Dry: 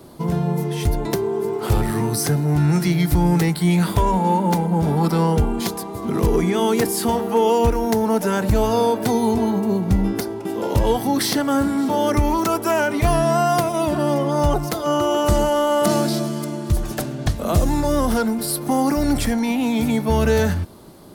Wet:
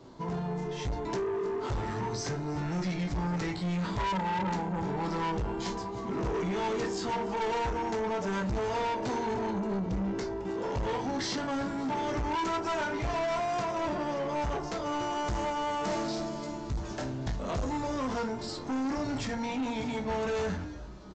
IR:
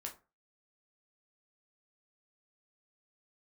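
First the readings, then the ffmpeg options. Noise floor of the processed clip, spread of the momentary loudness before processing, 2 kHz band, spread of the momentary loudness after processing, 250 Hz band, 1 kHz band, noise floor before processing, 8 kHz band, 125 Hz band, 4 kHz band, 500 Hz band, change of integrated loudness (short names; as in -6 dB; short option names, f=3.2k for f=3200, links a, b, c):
-38 dBFS, 6 LU, -8.5 dB, 4 LU, -13.5 dB, -9.5 dB, -30 dBFS, -16.0 dB, -15.0 dB, -10.5 dB, -12.5 dB, -12.5 dB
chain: -filter_complex "[0:a]equalizer=f=960:w=6.1:g=4,asplit=4[a][b][c][d];[b]adelay=322,afreqshift=-140,volume=-19dB[e];[c]adelay=644,afreqshift=-280,volume=-26.3dB[f];[d]adelay=966,afreqshift=-420,volume=-33.7dB[g];[a][e][f][g]amix=inputs=4:normalize=0[h];[1:a]atrim=start_sample=2205[i];[h][i]afir=irnorm=-1:irlink=0,aresample=16000,asoftclip=type=tanh:threshold=-23.5dB,aresample=44100,volume=-4.5dB"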